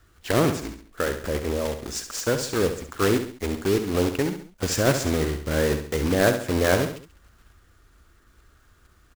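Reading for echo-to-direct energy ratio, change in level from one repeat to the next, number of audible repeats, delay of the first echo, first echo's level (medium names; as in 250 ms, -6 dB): -8.0 dB, -7.0 dB, 3, 68 ms, -9.0 dB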